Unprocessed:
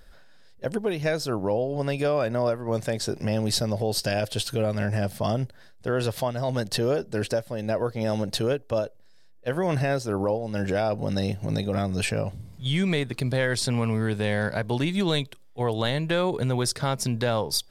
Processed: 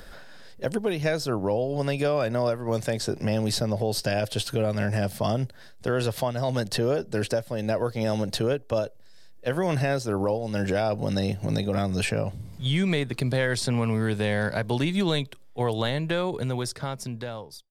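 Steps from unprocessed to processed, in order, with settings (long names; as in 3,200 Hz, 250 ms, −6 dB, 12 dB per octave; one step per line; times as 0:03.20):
fade-out on the ending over 2.10 s
multiband upward and downward compressor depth 40%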